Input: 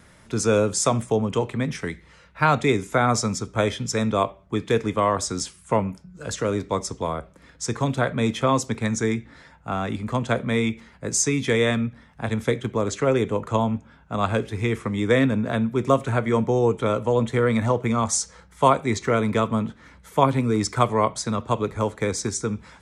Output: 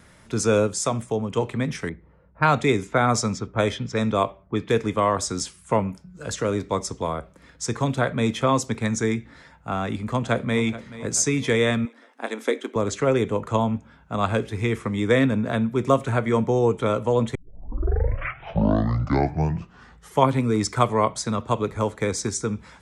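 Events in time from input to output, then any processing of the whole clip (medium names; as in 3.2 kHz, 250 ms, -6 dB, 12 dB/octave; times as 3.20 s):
0.67–1.37 s: gain -3.5 dB
1.89–4.69 s: level-controlled noise filter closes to 550 Hz, open at -17.5 dBFS
9.81–10.63 s: echo throw 430 ms, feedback 50%, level -16 dB
11.85–12.76 s: brick-wall FIR high-pass 230 Hz
17.35 s: tape start 2.96 s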